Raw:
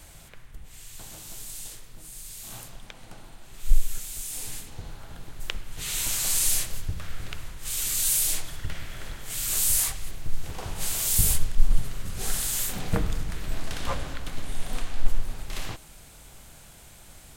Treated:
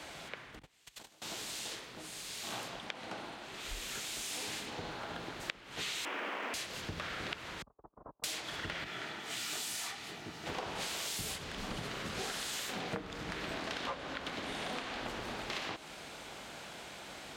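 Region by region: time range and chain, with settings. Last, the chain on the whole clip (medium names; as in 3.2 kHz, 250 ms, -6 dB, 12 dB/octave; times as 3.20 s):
0.59–1.22 s: gate -39 dBFS, range -24 dB + treble shelf 6.8 kHz +7 dB
6.05–6.54 s: one-bit delta coder 16 kbps, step -30.5 dBFS + Chebyshev high-pass 230 Hz, order 3 + companded quantiser 4-bit
7.62–8.24 s: steep low-pass 1.1 kHz 48 dB/octave + gate -31 dBFS, range -43 dB + bass shelf 370 Hz -5 dB
8.84–10.47 s: high-pass 90 Hz + comb of notches 540 Hz + detune thickener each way 50 cents
whole clip: high-pass 43 Hz 24 dB/octave; three-band isolator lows -20 dB, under 210 Hz, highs -20 dB, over 5.3 kHz; compression 10:1, threshold -44 dBFS; trim +8 dB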